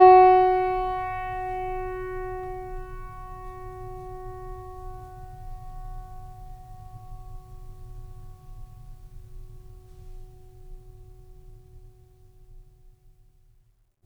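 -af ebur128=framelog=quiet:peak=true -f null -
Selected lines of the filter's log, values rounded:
Integrated loudness:
  I:         -23.4 LUFS
  Threshold: -39.9 LUFS
Loudness range:
  LRA:        20.3 LU
  Threshold: -56.0 LUFS
  LRA low:   -52.1 LUFS
  LRA high:  -31.8 LUFS
True peak:
  Peak:       -2.9 dBFS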